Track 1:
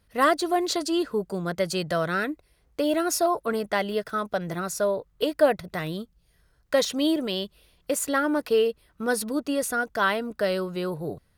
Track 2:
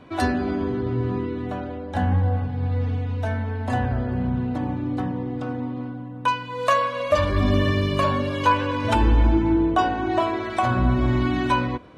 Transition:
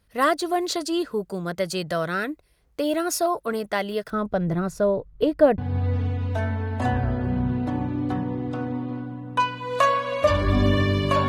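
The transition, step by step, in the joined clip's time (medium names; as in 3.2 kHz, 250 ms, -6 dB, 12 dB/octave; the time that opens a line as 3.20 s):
track 1
4.10–5.58 s: tilt EQ -3.5 dB/octave
5.58 s: go over to track 2 from 2.46 s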